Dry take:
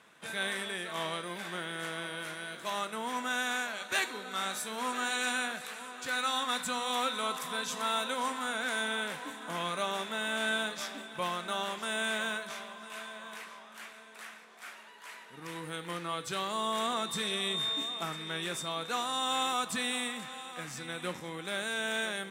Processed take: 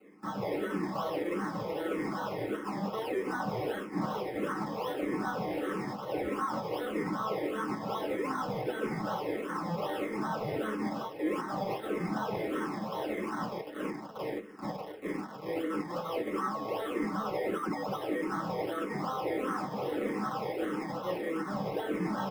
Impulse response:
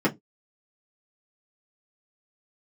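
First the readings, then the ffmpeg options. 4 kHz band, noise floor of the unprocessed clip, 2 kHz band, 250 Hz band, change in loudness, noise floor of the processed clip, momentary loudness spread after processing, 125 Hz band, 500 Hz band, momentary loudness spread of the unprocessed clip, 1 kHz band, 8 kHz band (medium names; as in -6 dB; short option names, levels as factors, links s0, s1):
-14.0 dB, -52 dBFS, -7.5 dB, +8.0 dB, -1.0 dB, -43 dBFS, 3 LU, +7.5 dB, +6.0 dB, 13 LU, 0.0 dB, -15.0 dB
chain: -filter_complex "[0:a]acrossover=split=730|5700[s0][s1][s2];[s1]acrusher=bits=7:mix=0:aa=0.000001[s3];[s0][s3][s2]amix=inputs=3:normalize=0,lowshelf=f=370:g=-6.5,acrusher=samples=25:mix=1:aa=0.000001:lfo=1:lforange=15:lforate=2.6,asplit=6[s4][s5][s6][s7][s8][s9];[s5]adelay=152,afreqshift=-58,volume=0.112[s10];[s6]adelay=304,afreqshift=-116,volume=0.0676[s11];[s7]adelay=456,afreqshift=-174,volume=0.0403[s12];[s8]adelay=608,afreqshift=-232,volume=0.0243[s13];[s9]adelay=760,afreqshift=-290,volume=0.0146[s14];[s4][s10][s11][s12][s13][s14]amix=inputs=6:normalize=0,asplit=2[s15][s16];[s16]highpass=f=720:p=1,volume=5.62,asoftclip=type=tanh:threshold=0.141[s17];[s15][s17]amix=inputs=2:normalize=0,lowpass=f=7900:p=1,volume=0.501[s18];[1:a]atrim=start_sample=2205[s19];[s18][s19]afir=irnorm=-1:irlink=0,areverse,acompressor=threshold=0.0891:ratio=6,areverse,highshelf=f=10000:g=9,asplit=2[s20][s21];[s21]afreqshift=-1.6[s22];[s20][s22]amix=inputs=2:normalize=1,volume=0.447"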